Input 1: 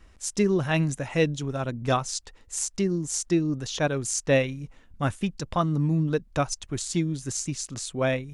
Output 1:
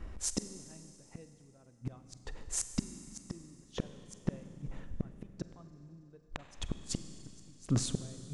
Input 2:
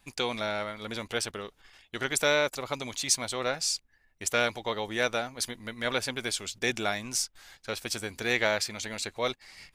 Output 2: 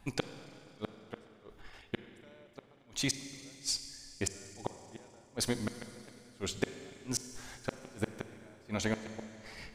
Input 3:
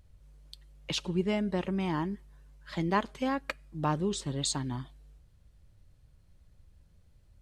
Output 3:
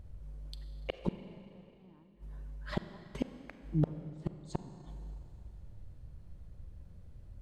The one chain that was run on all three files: tilt shelf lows +6.5 dB, about 1400 Hz; flipped gate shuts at -21 dBFS, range -40 dB; Schroeder reverb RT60 2.8 s, combs from 32 ms, DRR 10 dB; gain +3 dB

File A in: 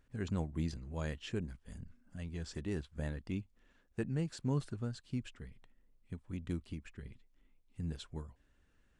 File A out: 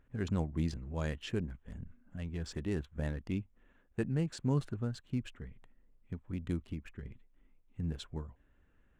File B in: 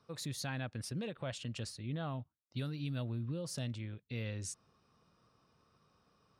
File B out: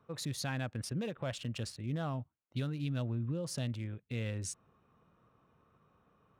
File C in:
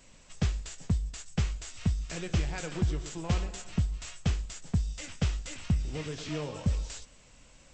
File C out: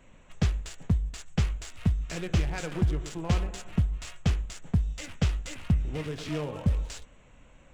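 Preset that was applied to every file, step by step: Wiener smoothing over 9 samples; gain +3 dB

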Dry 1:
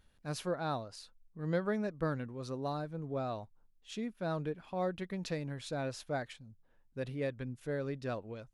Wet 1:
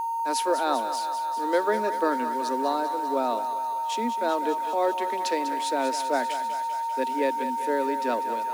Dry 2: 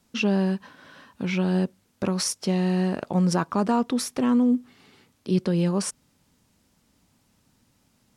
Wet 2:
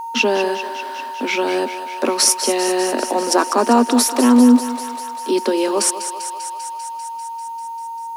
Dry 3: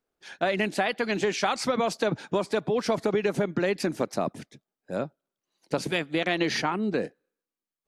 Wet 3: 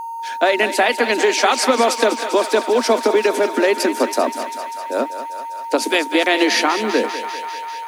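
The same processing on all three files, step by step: gate -55 dBFS, range -7 dB; steep high-pass 230 Hz 96 dB/oct; high shelf 9800 Hz +10 dB; whine 920 Hz -36 dBFS; in parallel at -9.5 dB: bit-crush 8-bit; on the sum: thinning echo 0.197 s, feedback 77%, high-pass 470 Hz, level -10 dB; gain +7.5 dB

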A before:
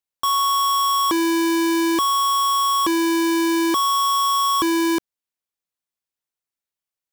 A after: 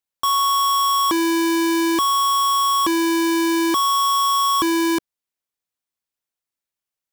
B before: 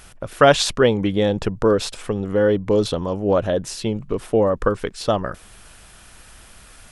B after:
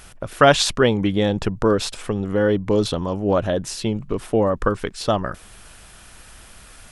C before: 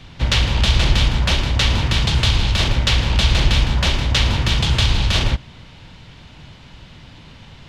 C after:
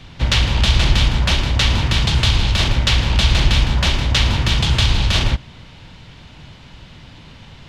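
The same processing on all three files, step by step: dynamic EQ 490 Hz, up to -4 dB, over -33 dBFS, Q 2.6; gain +1 dB

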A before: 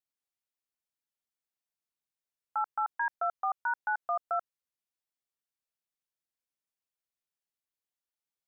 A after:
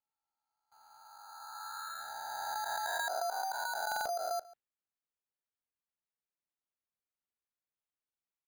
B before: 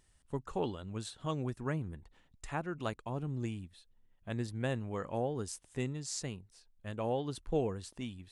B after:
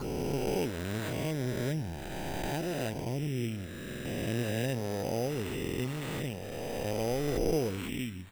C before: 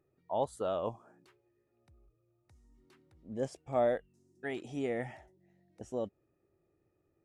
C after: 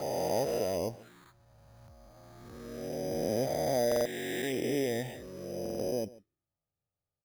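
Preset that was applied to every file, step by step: spectral swells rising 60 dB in 2.83 s; gate with hold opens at -59 dBFS; in parallel at -0.5 dB: compressor, threshold -39 dBFS; on the sum: envelope phaser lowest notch 350 Hz, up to 1200 Hz, full sweep at -31.5 dBFS; sample-and-hold 8×; outdoor echo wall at 24 m, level -20 dB; stuck buffer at 3.87/5.61, samples 2048, times 3

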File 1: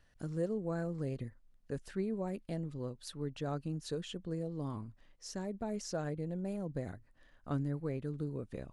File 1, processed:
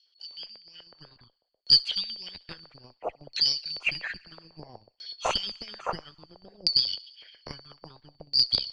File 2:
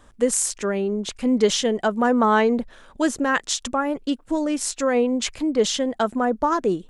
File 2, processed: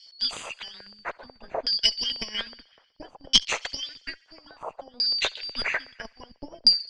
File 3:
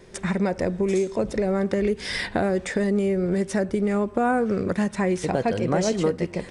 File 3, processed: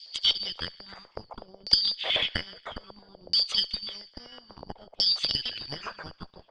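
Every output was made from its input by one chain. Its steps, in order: four-band scrambler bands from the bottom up 4321; recorder AGC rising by 11 dB/s; harmonic-percussive split percussive +9 dB; LFO high-pass square 8.1 Hz 550–2900 Hz; frequency shift -25 Hz; added harmonics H 2 -6 dB, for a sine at 5 dBFS; LFO low-pass saw down 0.6 Hz 570–5200 Hz; on a send: thinning echo 69 ms, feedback 74%, high-pass 1100 Hz, level -24 dB; on the sum: gain -13 dB

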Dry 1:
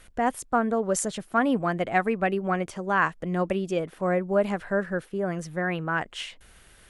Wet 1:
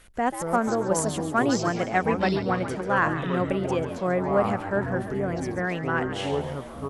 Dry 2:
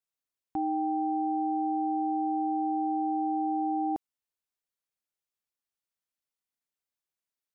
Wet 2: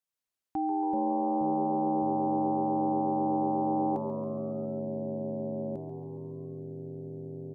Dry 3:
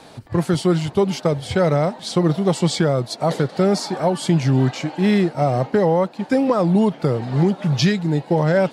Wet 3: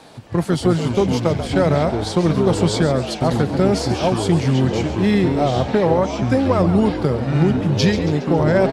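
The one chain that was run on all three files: added harmonics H 3 -33 dB, 4 -25 dB, 6 -33 dB, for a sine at -5.5 dBFS; echoes that change speed 0.154 s, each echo -6 st, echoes 3, each echo -6 dB; frequency-shifting echo 0.138 s, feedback 52%, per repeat +89 Hz, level -11.5 dB

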